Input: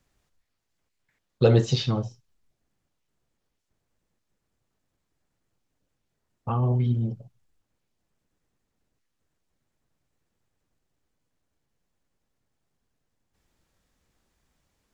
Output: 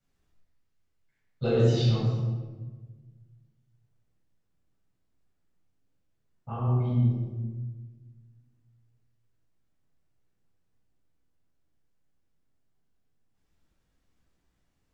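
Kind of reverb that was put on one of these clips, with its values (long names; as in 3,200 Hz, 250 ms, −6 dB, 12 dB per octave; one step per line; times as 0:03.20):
rectangular room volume 1,000 cubic metres, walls mixed, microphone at 7.3 metres
level −17 dB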